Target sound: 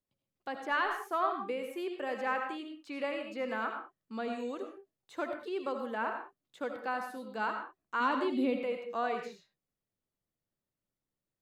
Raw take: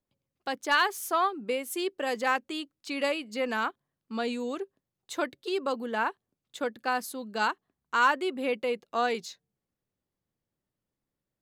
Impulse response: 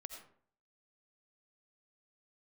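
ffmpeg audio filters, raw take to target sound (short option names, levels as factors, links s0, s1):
-filter_complex "[0:a]acrossover=split=2600[s0][s1];[s1]acompressor=threshold=0.00251:ratio=4:attack=1:release=60[s2];[s0][s2]amix=inputs=2:normalize=0,asettb=1/sr,asplit=3[s3][s4][s5];[s3]atrim=end=8.004[s6];[s4]atrim=start=8:end=8.62,asetpts=PTS-STARTPTS,afade=t=in:d=0.004:c=qsin,afade=t=out:st=0.616:d=0.004:c=qsin,equalizer=f=250:t=o:w=0.67:g=12,equalizer=f=1600:t=o:w=0.67:g=-6,equalizer=f=4000:t=o:w=0.67:g=9[s7];[s5]atrim=start=8.616[s8];[s6][s7]acrossfade=d=0.004:c1=hsin:c2=qsin[s9];[s9][s8]acrossfade=d=0.004:c1=qsin:c2=hsin[s10];[1:a]atrim=start_sample=2205,afade=t=out:st=0.26:d=0.01,atrim=end_sample=11907[s11];[s10][s11]afir=irnorm=-1:irlink=0"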